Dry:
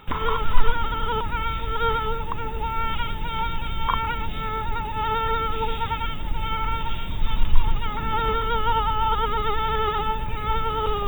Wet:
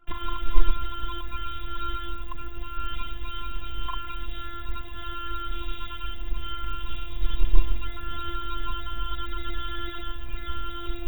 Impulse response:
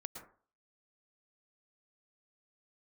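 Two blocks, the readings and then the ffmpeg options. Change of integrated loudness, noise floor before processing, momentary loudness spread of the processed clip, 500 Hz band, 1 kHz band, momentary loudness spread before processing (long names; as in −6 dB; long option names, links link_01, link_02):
−8.5 dB, −29 dBFS, 7 LU, −16.0 dB, −12.0 dB, 6 LU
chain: -filter_complex "[0:a]acrossover=split=120|3000[link_01][link_02][link_03];[link_02]acompressor=threshold=-49dB:ratio=1.5[link_04];[link_01][link_04][link_03]amix=inputs=3:normalize=0,anlmdn=0.1,afftfilt=real='hypot(re,im)*cos(PI*b)':imag='0':win_size=512:overlap=0.75,volume=1dB"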